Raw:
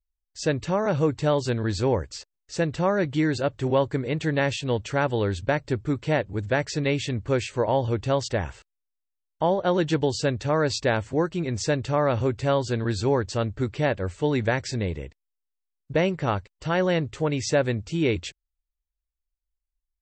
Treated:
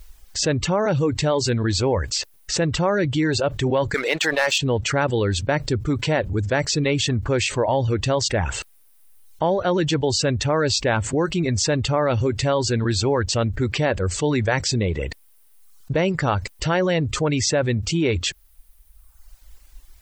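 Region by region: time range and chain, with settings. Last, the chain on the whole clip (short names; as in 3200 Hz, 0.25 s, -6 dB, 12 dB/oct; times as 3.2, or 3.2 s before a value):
3.94–4.58 HPF 700 Hz + sample leveller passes 2
whole clip: reverb removal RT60 0.85 s; fast leveller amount 70%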